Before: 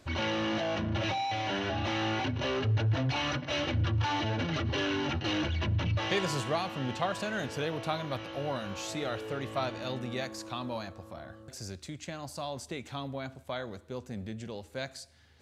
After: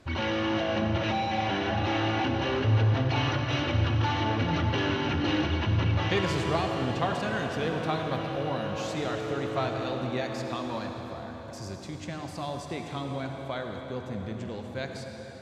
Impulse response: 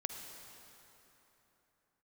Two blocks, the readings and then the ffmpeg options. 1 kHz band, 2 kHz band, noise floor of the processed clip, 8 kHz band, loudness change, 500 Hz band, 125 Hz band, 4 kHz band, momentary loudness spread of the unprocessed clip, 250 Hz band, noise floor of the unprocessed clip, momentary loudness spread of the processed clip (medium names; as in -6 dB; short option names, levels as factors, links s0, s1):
+4.0 dB, +3.0 dB, -41 dBFS, -2.0 dB, +4.0 dB, +4.0 dB, +4.5 dB, +1.5 dB, 12 LU, +4.5 dB, -54 dBFS, 11 LU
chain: -filter_complex "[0:a]aemphasis=mode=reproduction:type=cd,bandreject=f=600:w=15[s0];[1:a]atrim=start_sample=2205,asetrate=33516,aresample=44100[s1];[s0][s1]afir=irnorm=-1:irlink=0,volume=1.33"